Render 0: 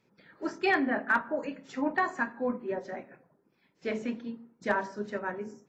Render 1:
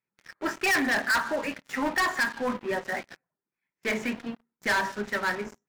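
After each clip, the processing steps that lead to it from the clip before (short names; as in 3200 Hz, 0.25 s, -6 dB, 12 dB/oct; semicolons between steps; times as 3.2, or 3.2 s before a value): graphic EQ 125/250/500/2000/4000 Hz -4/-6/-7/+7/-7 dB; sample leveller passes 5; gain -7.5 dB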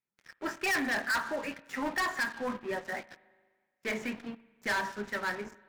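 spring tank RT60 1.6 s, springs 39/57 ms, chirp 70 ms, DRR 19.5 dB; gain -5.5 dB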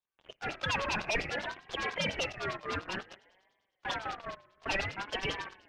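half-waves squared off; LFO low-pass sine 10 Hz 800–4900 Hz; ring modulator with a swept carrier 1100 Hz, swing 25%, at 0.56 Hz; gain -3 dB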